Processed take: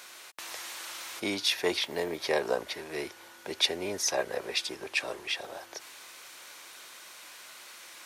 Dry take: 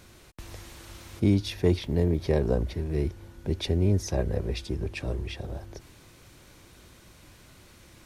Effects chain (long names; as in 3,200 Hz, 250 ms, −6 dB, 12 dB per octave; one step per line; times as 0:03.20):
high-pass filter 880 Hz 12 dB per octave
level +9 dB